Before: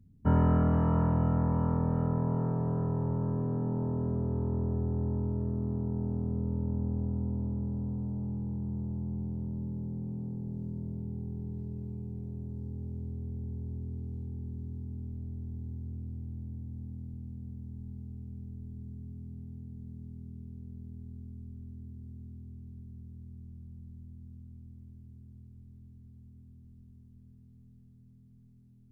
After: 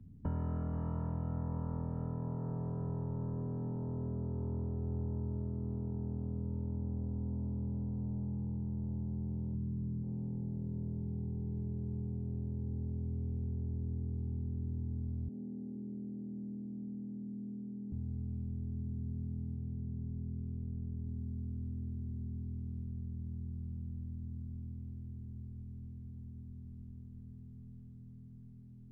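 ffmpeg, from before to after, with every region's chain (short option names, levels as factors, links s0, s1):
-filter_complex "[0:a]asettb=1/sr,asplit=3[s0][s1][s2];[s0]atrim=end=9.544[s3];[s1]atrim=start=9.54:end=10.03,asetpts=PTS-STARTPTS,afade=t=in:d=0.004:c=qsin,afade=t=out:st=0.486:d=0.004:c=qsin,equalizer=f=780:w=3.5:g=-9.5,aecho=1:1:0.8:0.65,atrim=end_sample=21609[s4];[s2]atrim=start=10.026[s5];[s3][s4]acrossfade=d=0.004:c1=hsin:c2=qsin[s6];[s6][s5]acrossfade=d=0.004:c1=qsin:c2=hsin,asettb=1/sr,asplit=3[s7][s8][s9];[s7]atrim=end=15.284[s10];[s8]atrim=start=15.28:end=17.92,asetpts=PTS-STARTPTS,afade=t=in:d=0.004:c=qsin,afade=t=out:st=2.636:d=0.004:c=qsin,asuperpass=centerf=370:order=8:qfactor=0.62,aecho=1:1:473:0.282,atrim=end_sample=116424[s11];[s9]atrim=start=17.916[s12];[s10][s11]acrossfade=d=0.004:c1=hsin:c2=qsin[s13];[s13][s12]acrossfade=d=0.004:c1=qsin:c2=hsin,asettb=1/sr,asplit=3[s14][s15][s16];[s14]atrim=end=19.554[s17];[s15]atrim=start=19.55:end=21.07,asetpts=PTS-STARTPTS,afade=t=in:d=0.004:c=qsin,afade=t=out:st=1.516:d=0.004:c=qsin,lowpass=1200,bandreject=f=50:t=h:w=6,bandreject=f=100:t=h:w=6,bandreject=f=150:t=h:w=6,bandreject=f=200:t=h:w=6,bandreject=f=250:t=h:w=6,bandreject=f=300:t=h:w=6,bandreject=f=350:t=h:w=6,bandreject=f=400:t=h:w=6[s18];[s16]atrim=start=21.066[s19];[s17][s18]acrossfade=d=0.004:c1=hsin:c2=qsin[s20];[s20][s19]acrossfade=d=0.004:c1=qsin:c2=hsin,acompressor=threshold=0.01:ratio=4,highshelf=f=2600:g=-11.5,acrossover=split=120|3000[s21][s22][s23];[s22]acompressor=threshold=0.00631:ratio=6[s24];[s21][s24][s23]amix=inputs=3:normalize=0,volume=1.88"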